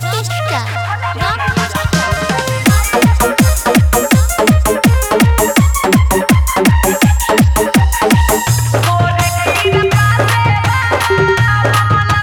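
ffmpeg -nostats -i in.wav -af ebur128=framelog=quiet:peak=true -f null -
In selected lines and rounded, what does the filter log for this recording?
Integrated loudness:
  I:         -11.7 LUFS
  Threshold: -21.7 LUFS
Loudness range:
  LRA:         1.9 LU
  Threshold: -31.5 LUFS
  LRA low:   -12.7 LUFS
  LRA high:  -10.8 LUFS
True peak:
  Peak:       -2.5 dBFS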